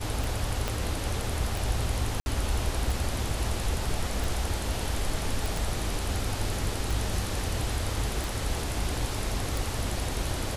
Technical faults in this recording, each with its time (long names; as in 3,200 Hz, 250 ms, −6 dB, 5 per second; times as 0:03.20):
scratch tick 45 rpm
0:00.68: click −13 dBFS
0:02.20–0:02.26: drop-out 60 ms
0:05.46: click